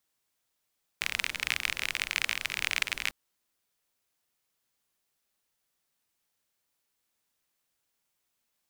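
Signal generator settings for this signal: rain from filtered ticks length 2.10 s, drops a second 38, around 2300 Hz, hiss -16 dB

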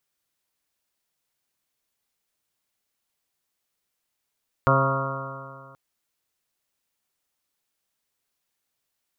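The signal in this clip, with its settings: stretched partials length 1.08 s, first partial 134 Hz, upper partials -7.5/-9/-2/-6/-18/-5/-1.5/-3/-3 dB, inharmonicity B 0.00071, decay 2.05 s, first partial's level -20 dB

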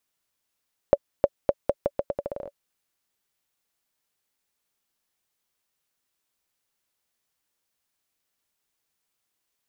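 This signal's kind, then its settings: bouncing ball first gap 0.31 s, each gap 0.81, 568 Hz, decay 45 ms -4 dBFS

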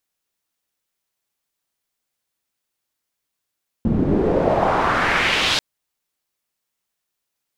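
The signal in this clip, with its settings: swept filtered noise white, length 1.74 s lowpass, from 200 Hz, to 4100 Hz, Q 1.9, exponential, gain ramp -14 dB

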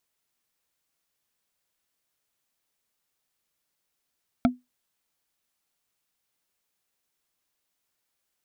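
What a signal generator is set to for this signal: wood hit, lowest mode 249 Hz, decay 0.19 s, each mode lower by 4 dB, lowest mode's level -13 dB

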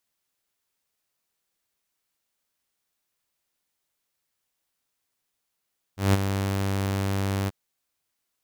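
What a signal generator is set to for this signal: ADSR saw 97.9 Hz, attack 0.165 s, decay 26 ms, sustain -8.5 dB, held 1.51 s, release 25 ms -13 dBFS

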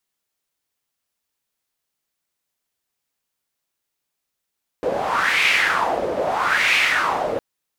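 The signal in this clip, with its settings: wind-like swept noise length 2.56 s, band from 510 Hz, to 2400 Hz, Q 4, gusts 2, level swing 6 dB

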